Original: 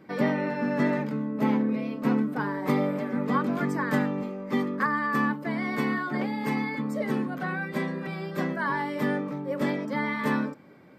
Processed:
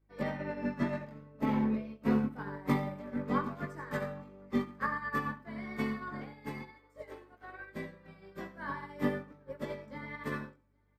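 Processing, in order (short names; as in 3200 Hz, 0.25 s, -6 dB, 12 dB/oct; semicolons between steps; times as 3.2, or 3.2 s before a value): 6.61–7.72 steep high-pass 290 Hz 96 dB/oct; hum 50 Hz, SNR 16 dB; echo 0.812 s -21.5 dB; chorus 0.52 Hz, delay 18.5 ms, depth 3.1 ms; reverb RT60 0.50 s, pre-delay 53 ms, DRR 6.5 dB; upward expander 2.5:1, over -41 dBFS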